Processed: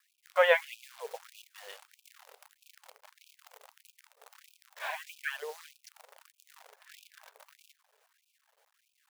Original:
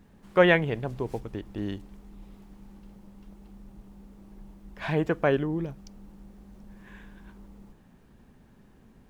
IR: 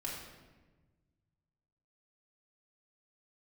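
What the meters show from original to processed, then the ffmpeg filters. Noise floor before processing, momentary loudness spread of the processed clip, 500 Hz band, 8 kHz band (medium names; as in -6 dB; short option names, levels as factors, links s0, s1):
-57 dBFS, 24 LU, -6.0 dB, no reading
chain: -af "aphaser=in_gain=1:out_gain=1:delay=4.2:decay=0.46:speed=0.91:type=triangular,acrusher=bits=8:dc=4:mix=0:aa=0.000001,afftfilt=real='re*gte(b*sr/1024,400*pow(2400/400,0.5+0.5*sin(2*PI*1.6*pts/sr)))':imag='im*gte(b*sr/1024,400*pow(2400/400,0.5+0.5*sin(2*PI*1.6*pts/sr)))':win_size=1024:overlap=0.75,volume=0.708"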